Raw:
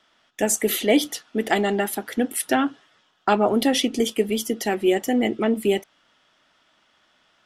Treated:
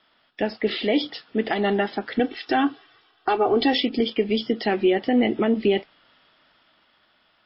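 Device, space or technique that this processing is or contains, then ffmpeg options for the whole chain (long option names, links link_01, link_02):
low-bitrate web radio: -filter_complex "[0:a]asettb=1/sr,asplit=3[link_01][link_02][link_03];[link_01]atrim=end=2.194[link_04];[link_02]atrim=start=2.19:end=3.77,asetpts=PTS-STARTPTS,afade=type=in:duration=0.004:curve=qsin,afade=type=out:start_time=1.576:duration=0.004:curve=qsin,aecho=1:1:2.6:0.9,atrim=end_sample=69678[link_05];[link_03]atrim=start=3.766[link_06];[link_04][link_05]acrossfade=duration=0.004:curve1=hsin:curve2=qsin[link_07];[link_07][link_06]acrossfade=duration=0.004:curve1=qsin:curve2=hsin,dynaudnorm=framelen=330:gausssize=9:maxgain=6dB,alimiter=limit=-10.5dB:level=0:latency=1:release=141" -ar 12000 -c:a libmp3lame -b:a 24k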